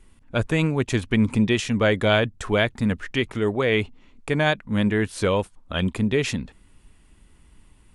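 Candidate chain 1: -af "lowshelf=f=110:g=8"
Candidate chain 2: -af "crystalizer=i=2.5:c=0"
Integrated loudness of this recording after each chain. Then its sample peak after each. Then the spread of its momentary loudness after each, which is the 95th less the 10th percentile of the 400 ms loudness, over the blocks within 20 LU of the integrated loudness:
-21.5 LUFS, -22.0 LUFS; -5.5 dBFS, -3.5 dBFS; 8 LU, 7 LU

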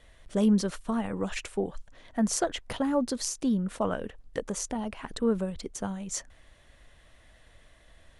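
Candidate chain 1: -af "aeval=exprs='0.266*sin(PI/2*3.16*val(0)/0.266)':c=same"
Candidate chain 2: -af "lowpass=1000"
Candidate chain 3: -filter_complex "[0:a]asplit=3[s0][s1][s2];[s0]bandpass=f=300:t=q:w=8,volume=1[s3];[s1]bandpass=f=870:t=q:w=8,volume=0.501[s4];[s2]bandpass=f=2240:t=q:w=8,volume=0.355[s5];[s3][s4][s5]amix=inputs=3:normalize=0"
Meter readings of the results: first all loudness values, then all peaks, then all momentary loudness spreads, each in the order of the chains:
-20.0 LUFS, -31.0 LUFS, -41.5 LUFS; -11.5 dBFS, -15.0 dBFS, -24.0 dBFS; 8 LU, 11 LU, 16 LU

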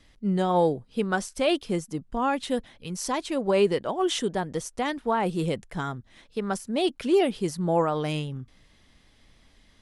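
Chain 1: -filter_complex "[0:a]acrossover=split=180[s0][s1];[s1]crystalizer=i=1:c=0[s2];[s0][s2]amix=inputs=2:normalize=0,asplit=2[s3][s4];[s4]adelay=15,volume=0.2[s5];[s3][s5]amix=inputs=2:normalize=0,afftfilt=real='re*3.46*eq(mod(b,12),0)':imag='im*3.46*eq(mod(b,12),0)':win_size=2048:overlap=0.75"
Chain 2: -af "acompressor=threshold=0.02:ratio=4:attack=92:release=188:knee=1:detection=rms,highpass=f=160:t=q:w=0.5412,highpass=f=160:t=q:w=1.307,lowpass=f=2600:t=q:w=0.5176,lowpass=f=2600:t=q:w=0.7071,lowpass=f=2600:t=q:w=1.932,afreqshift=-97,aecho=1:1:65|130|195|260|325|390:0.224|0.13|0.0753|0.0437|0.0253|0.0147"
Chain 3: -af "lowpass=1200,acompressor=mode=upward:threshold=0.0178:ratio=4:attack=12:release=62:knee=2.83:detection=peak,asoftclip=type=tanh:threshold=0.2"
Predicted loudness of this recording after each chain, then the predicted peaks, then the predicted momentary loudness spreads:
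-29.5 LUFS, -35.5 LUFS, -28.5 LUFS; -8.5 dBFS, -19.5 dBFS, -15.5 dBFS; 14 LU, 6 LU, 21 LU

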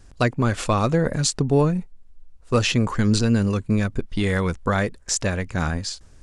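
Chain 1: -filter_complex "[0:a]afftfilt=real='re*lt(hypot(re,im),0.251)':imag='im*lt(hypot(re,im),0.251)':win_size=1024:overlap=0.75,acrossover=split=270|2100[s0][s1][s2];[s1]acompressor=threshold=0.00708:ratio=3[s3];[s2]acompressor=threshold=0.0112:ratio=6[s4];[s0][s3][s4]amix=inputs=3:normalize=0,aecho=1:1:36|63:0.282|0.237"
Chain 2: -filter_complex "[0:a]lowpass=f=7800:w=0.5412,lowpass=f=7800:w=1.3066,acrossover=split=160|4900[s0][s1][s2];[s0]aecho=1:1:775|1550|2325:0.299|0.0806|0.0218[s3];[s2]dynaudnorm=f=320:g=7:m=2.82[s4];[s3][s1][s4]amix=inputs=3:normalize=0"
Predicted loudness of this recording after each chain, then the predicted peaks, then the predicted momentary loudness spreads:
-38.0 LUFS, -22.0 LUFS; -19.0 dBFS, -1.5 dBFS; 4 LU, 9 LU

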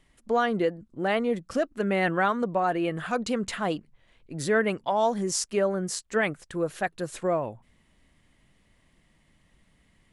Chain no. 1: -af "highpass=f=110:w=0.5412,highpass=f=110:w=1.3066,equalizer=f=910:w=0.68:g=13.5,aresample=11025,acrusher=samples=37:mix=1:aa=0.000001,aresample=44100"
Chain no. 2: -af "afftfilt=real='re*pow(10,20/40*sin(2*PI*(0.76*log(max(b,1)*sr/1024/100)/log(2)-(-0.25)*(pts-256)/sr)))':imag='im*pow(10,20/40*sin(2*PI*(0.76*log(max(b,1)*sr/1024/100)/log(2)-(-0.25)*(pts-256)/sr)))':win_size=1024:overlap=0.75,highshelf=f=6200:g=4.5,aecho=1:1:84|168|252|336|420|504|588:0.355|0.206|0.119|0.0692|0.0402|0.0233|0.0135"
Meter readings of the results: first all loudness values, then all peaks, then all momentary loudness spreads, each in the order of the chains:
-21.5 LUFS, -22.0 LUFS; -1.0 dBFS, -6.5 dBFS; 10 LU, 9 LU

